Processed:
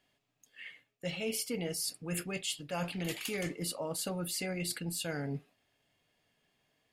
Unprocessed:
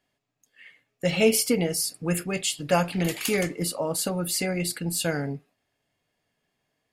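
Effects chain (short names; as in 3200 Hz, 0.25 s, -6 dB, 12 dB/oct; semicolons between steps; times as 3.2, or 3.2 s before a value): bell 3100 Hz +4.5 dB 0.83 oct; reverse; compressor 6:1, threshold -34 dBFS, peak gain reduction 18 dB; reverse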